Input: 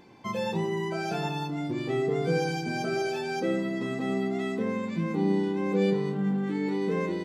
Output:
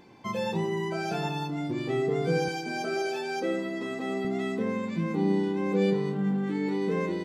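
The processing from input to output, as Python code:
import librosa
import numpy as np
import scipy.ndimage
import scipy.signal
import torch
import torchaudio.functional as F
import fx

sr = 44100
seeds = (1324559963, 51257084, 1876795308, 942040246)

y = fx.highpass(x, sr, hz=270.0, slope=12, at=(2.48, 4.25))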